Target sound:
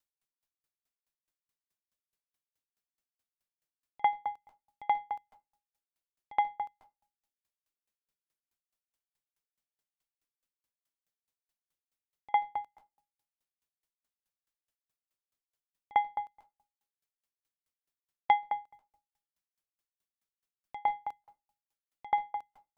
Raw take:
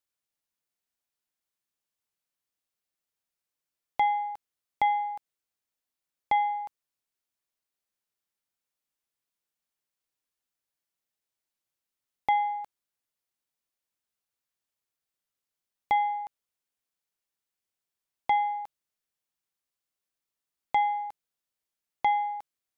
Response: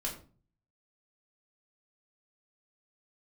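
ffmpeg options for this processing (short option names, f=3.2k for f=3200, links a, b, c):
-filter_complex "[0:a]lowshelf=f=120:g=4.5,asplit=2[a][b];[1:a]atrim=start_sample=2205,asetrate=43659,aresample=44100,adelay=137[c];[b][c]afir=irnorm=-1:irlink=0,volume=-13dB[d];[a][d]amix=inputs=2:normalize=0,aeval=exprs='val(0)*pow(10,-40*if(lt(mod(4.7*n/s,1),2*abs(4.7)/1000),1-mod(4.7*n/s,1)/(2*abs(4.7)/1000),(mod(4.7*n/s,1)-2*abs(4.7)/1000)/(1-2*abs(4.7)/1000))/20)':c=same,volume=4dB"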